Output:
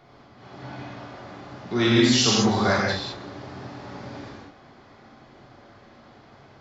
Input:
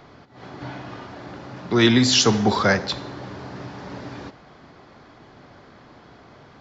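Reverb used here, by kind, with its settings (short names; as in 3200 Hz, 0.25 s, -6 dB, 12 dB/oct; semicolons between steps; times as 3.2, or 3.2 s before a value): non-linear reverb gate 0.23 s flat, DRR -5 dB; gain -8.5 dB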